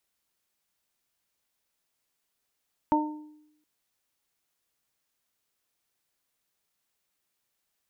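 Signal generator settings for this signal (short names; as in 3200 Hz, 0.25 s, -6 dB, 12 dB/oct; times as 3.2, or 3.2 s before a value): additive tone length 0.72 s, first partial 303 Hz, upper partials -7/2 dB, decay 0.85 s, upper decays 0.43/0.47 s, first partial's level -21.5 dB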